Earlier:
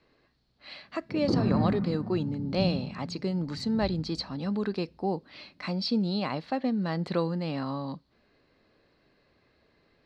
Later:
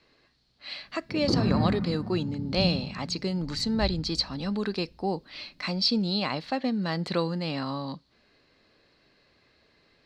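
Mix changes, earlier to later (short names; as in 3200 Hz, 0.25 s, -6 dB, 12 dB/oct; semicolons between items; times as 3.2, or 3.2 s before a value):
background: remove HPF 94 Hz; master: add high shelf 2200 Hz +10 dB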